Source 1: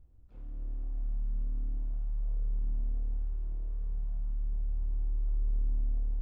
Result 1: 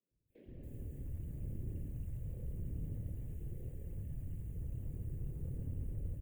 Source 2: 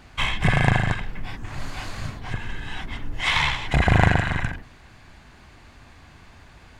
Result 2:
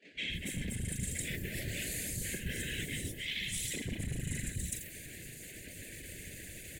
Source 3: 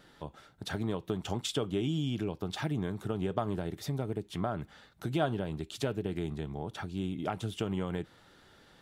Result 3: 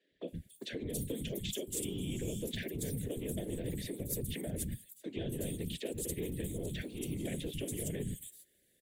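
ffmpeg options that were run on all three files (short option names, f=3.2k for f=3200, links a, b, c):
-filter_complex "[0:a]asuperstop=centerf=1000:order=12:qfactor=0.85,agate=range=-19dB:threshold=-49dB:ratio=16:detection=peak,highpass=51,lowshelf=f=86:g=-9.5,acrossover=split=340|3000[a][b][c];[b]acompressor=threshold=-40dB:ratio=6[d];[a][d][c]amix=inputs=3:normalize=0,acrossover=split=310[e][f];[f]aexciter=amount=6.5:drive=6.5:freq=7.4k[g];[e][g]amix=inputs=2:normalize=0,afftfilt=real='hypot(re,im)*cos(2*PI*random(0))':imag='hypot(re,im)*sin(2*PI*random(1))':win_size=512:overlap=0.75,acrossover=split=230|4300[h][i][j];[h]adelay=110[k];[j]adelay=280[l];[k][i][l]amix=inputs=3:normalize=0,asoftclip=type=tanh:threshold=-24dB,areverse,acompressor=threshold=-46dB:ratio=16,areverse,volume=12dB"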